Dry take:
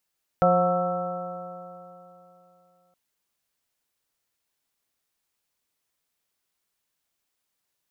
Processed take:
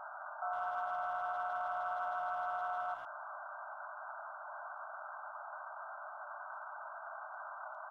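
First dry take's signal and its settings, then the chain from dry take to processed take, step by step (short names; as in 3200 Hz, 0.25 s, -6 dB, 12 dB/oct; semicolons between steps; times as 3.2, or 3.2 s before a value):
stretched partials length 2.52 s, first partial 176 Hz, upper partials -11.5/4.5/3/-13.5/-14/0 dB, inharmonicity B 0.0031, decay 3.08 s, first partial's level -23 dB
infinite clipping; brick-wall FIR band-pass 580–1600 Hz; speakerphone echo 0.11 s, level -12 dB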